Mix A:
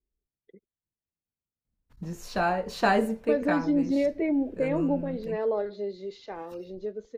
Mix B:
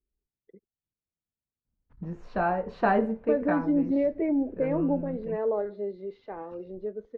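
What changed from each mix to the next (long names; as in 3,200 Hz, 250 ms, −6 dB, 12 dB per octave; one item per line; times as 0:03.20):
master: add low-pass filter 1,600 Hz 12 dB per octave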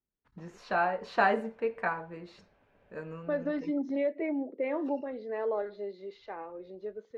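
first voice: entry −1.65 s
master: add spectral tilt +4 dB per octave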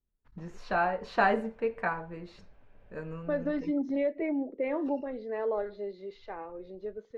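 master: remove high-pass filter 190 Hz 6 dB per octave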